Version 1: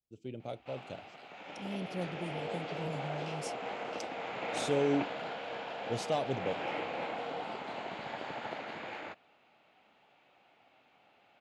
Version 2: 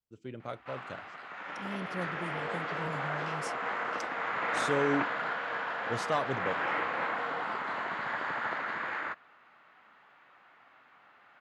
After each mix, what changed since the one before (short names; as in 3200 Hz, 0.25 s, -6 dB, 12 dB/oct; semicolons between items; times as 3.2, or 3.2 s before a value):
master: add band shelf 1400 Hz +13 dB 1.2 oct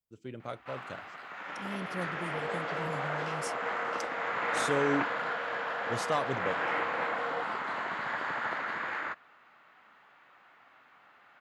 second sound: add tilt -4.5 dB/oct; master: add high shelf 9900 Hz +12 dB